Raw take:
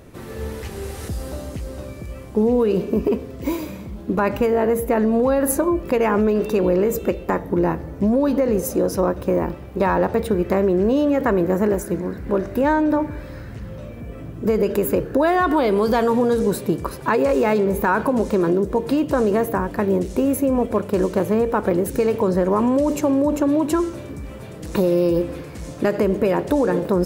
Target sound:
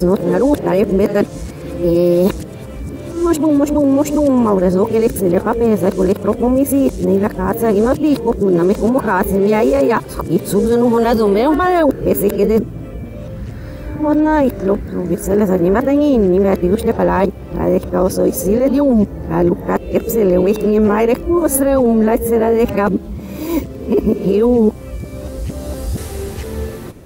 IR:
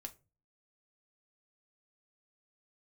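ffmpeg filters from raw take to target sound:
-af "areverse,equalizer=frequency=1600:width_type=o:width=2.6:gain=-4,volume=6.5dB"

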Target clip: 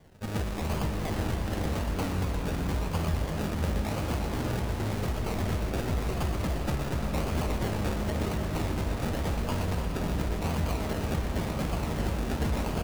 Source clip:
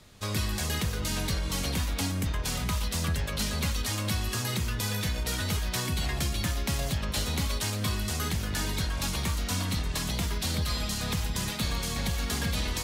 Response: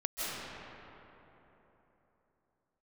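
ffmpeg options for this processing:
-filter_complex "[0:a]acrusher=samples=33:mix=1:aa=0.000001:lfo=1:lforange=19.8:lforate=0.92,asplit=2[link_01][link_02];[link_02]adelay=13,volume=-13dB[link_03];[link_01][link_03]amix=inputs=2:normalize=0,asplit=2[link_04][link_05];[1:a]atrim=start_sample=2205,adelay=121[link_06];[link_05][link_06]afir=irnorm=-1:irlink=0,volume=-9.5dB[link_07];[link_04][link_07]amix=inputs=2:normalize=0,volume=-1.5dB"

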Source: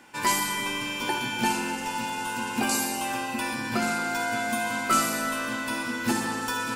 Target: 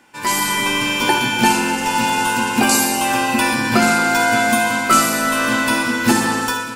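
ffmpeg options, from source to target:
ffmpeg -i in.wav -af "dynaudnorm=framelen=100:gausssize=7:maxgain=14.5dB" out.wav

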